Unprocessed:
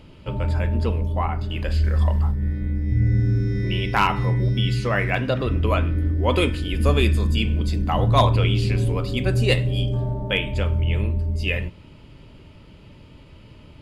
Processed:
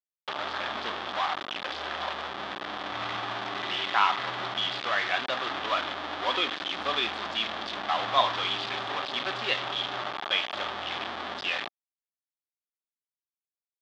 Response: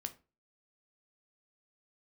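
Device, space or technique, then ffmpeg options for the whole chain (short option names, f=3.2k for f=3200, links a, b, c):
hand-held game console: -af "acrusher=bits=3:mix=0:aa=0.000001,highpass=460,equalizer=f=470:t=q:w=4:g=-7,equalizer=f=760:t=q:w=4:g=5,equalizer=f=1.2k:t=q:w=4:g=7,equalizer=f=1.7k:t=q:w=4:g=4,equalizer=f=3.4k:t=q:w=4:g=9,lowpass=f=4.5k:w=0.5412,lowpass=f=4.5k:w=1.3066,volume=-7.5dB"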